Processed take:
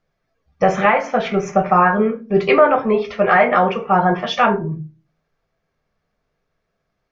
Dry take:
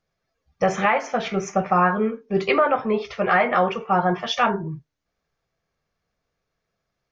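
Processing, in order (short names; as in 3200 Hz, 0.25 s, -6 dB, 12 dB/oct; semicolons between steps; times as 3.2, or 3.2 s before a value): high shelf 5200 Hz -12 dB; on a send: reverb RT60 0.35 s, pre-delay 3 ms, DRR 8 dB; on the sum: gain +5 dB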